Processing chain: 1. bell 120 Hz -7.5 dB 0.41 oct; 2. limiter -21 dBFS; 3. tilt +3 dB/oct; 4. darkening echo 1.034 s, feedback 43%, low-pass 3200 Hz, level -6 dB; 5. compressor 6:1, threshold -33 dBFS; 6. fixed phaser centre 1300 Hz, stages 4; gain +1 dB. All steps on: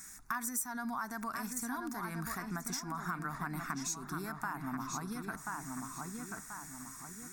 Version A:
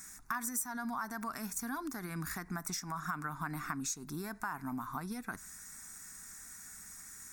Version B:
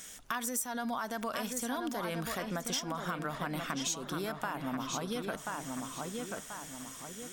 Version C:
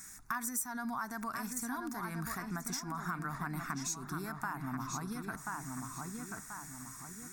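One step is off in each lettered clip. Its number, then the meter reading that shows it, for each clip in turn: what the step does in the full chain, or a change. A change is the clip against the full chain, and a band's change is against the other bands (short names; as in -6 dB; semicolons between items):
4, momentary loudness spread change +4 LU; 6, 500 Hz band +9.0 dB; 1, 125 Hz band +2.0 dB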